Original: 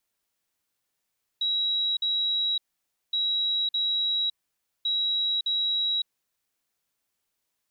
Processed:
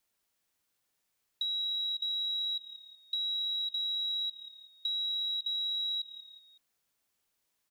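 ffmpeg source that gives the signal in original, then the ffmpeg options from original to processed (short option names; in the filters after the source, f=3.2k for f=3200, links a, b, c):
-f lavfi -i "aevalsrc='0.0708*sin(2*PI*3870*t)*clip(min(mod(mod(t,1.72),0.61),0.56-mod(mod(t,1.72),0.61))/0.005,0,1)*lt(mod(t,1.72),1.22)':d=5.16:s=44100"
-filter_complex "[0:a]asplit=4[a][b][c][d];[b]adelay=186,afreqshift=-36,volume=-21dB[e];[c]adelay=372,afreqshift=-72,volume=-27.6dB[f];[d]adelay=558,afreqshift=-108,volume=-34.1dB[g];[a][e][f][g]amix=inputs=4:normalize=0,acompressor=threshold=-32dB:ratio=8,acrusher=bits=8:mode=log:mix=0:aa=0.000001"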